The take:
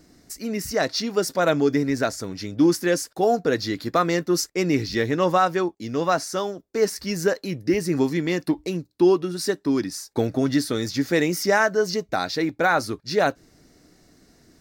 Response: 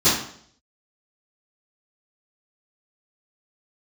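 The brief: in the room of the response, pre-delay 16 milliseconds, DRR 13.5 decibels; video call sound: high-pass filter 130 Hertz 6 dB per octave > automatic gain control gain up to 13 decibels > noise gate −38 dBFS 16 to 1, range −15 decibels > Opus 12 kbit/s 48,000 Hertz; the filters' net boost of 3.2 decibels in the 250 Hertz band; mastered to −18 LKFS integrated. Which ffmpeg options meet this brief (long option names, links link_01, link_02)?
-filter_complex "[0:a]equalizer=frequency=250:width_type=o:gain=5.5,asplit=2[link_01][link_02];[1:a]atrim=start_sample=2205,adelay=16[link_03];[link_02][link_03]afir=irnorm=-1:irlink=0,volume=-32.5dB[link_04];[link_01][link_04]amix=inputs=2:normalize=0,highpass=frequency=130:poles=1,dynaudnorm=maxgain=13dB,agate=range=-15dB:threshold=-38dB:ratio=16,volume=3dB" -ar 48000 -c:a libopus -b:a 12k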